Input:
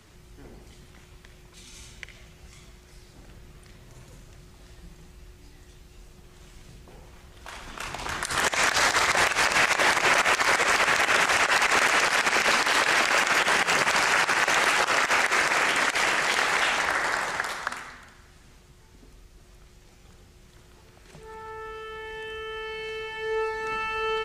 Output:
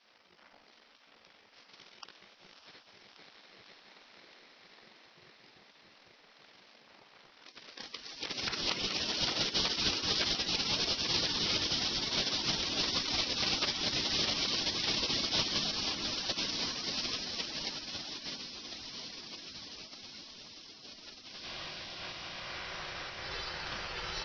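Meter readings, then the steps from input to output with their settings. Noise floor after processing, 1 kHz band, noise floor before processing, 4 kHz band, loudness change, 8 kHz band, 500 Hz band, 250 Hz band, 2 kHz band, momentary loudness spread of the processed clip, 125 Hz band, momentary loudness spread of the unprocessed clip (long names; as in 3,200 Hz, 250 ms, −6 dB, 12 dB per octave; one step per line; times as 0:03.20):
−62 dBFS, −18.0 dB, −53 dBFS, −1.5 dB, −10.0 dB, −11.0 dB, −13.5 dB, −3.0 dB, −18.0 dB, 17 LU, −2.5 dB, 15 LU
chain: high-shelf EQ 4,300 Hz +2 dB
harmonic generator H 4 −25 dB, 7 −22 dB, 8 −13 dB, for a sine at −11.5 dBFS
parametric band 260 Hz −10.5 dB 0.53 octaves
feedback delay with all-pass diffusion 650 ms, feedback 79%, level −8.5 dB
gate on every frequency bin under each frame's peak −15 dB weak
Butterworth low-pass 5,600 Hz 96 dB per octave
level +2 dB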